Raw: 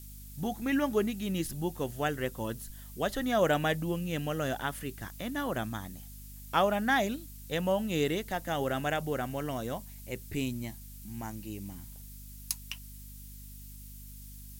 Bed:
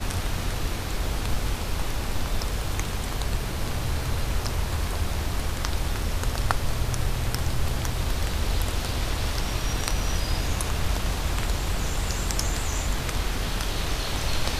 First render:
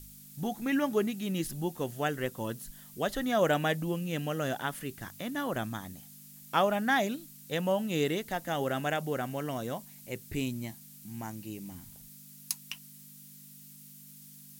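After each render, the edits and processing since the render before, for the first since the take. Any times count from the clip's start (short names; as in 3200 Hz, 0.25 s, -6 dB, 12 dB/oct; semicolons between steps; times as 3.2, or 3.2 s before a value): de-hum 50 Hz, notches 2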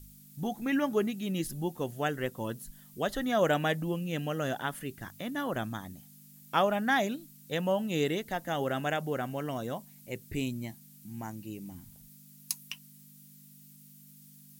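denoiser 6 dB, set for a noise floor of -52 dBFS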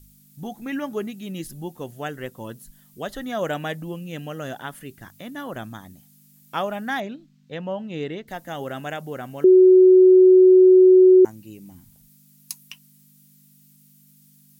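7–8.28 air absorption 180 m; 9.44–11.25 bleep 371 Hz -8 dBFS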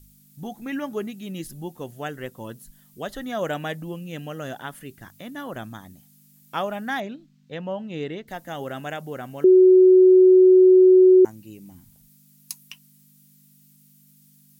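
gain -1 dB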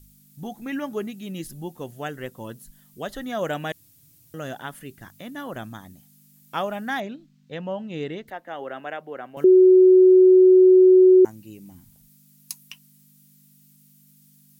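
3.72–4.34 room tone; 8.3–9.37 three-band isolator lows -17 dB, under 290 Hz, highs -20 dB, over 3100 Hz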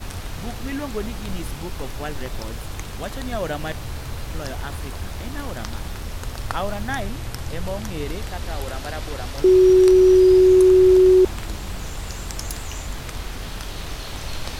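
add bed -4 dB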